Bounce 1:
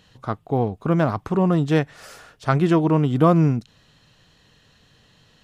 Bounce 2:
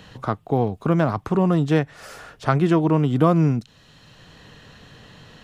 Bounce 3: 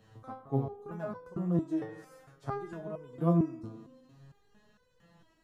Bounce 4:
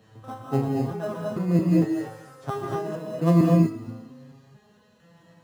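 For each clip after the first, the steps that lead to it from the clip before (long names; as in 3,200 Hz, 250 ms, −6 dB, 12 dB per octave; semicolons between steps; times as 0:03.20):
multiband upward and downward compressor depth 40%
parametric band 3,100 Hz −10.5 dB 1.8 octaves; spring reverb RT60 1.5 s, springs 36/44 ms, chirp 25 ms, DRR 10 dB; step-sequenced resonator 4.4 Hz 110–500 Hz; level −2.5 dB
high-pass filter 98 Hz; in parallel at −12 dB: sample-rate reduction 2,300 Hz, jitter 0%; on the sum: reverb whose tail is shaped and stops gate 270 ms rising, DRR −1 dB; level +4.5 dB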